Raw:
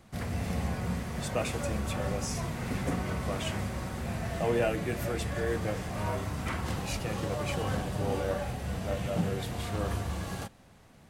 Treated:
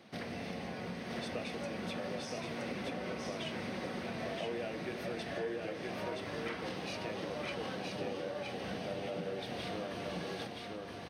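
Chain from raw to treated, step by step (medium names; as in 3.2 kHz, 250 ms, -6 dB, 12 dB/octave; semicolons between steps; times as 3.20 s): high-pass 280 Hz 12 dB/octave; peaking EQ 1.1 kHz -7 dB 1.3 oct; compression, threshold -43 dBFS, peak gain reduction 15.5 dB; Savitzky-Golay filter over 15 samples; delay 971 ms -3 dB; trim +5 dB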